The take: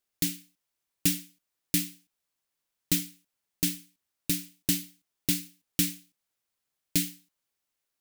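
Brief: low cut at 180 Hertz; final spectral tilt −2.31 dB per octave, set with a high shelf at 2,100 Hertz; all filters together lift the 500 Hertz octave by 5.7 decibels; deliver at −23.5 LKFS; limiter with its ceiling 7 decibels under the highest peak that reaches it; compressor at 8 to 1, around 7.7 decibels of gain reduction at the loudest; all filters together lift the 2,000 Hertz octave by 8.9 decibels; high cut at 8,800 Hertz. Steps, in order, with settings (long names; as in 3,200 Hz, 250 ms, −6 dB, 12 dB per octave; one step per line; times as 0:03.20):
high-pass filter 180 Hz
low-pass filter 8,800 Hz
parametric band 500 Hz +8.5 dB
parametric band 2,000 Hz +7.5 dB
high-shelf EQ 2,100 Hz +5 dB
downward compressor 8 to 1, threshold −28 dBFS
level +15.5 dB
brickwall limiter −1.5 dBFS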